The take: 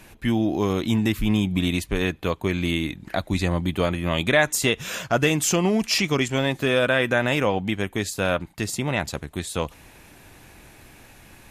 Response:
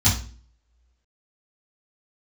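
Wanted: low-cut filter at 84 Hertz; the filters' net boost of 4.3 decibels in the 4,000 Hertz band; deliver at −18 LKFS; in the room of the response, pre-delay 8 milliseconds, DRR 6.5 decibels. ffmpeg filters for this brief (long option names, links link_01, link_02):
-filter_complex "[0:a]highpass=84,equalizer=frequency=4000:width_type=o:gain=5.5,asplit=2[link_01][link_02];[1:a]atrim=start_sample=2205,adelay=8[link_03];[link_02][link_03]afir=irnorm=-1:irlink=0,volume=-21.5dB[link_04];[link_01][link_04]amix=inputs=2:normalize=0,volume=0.5dB"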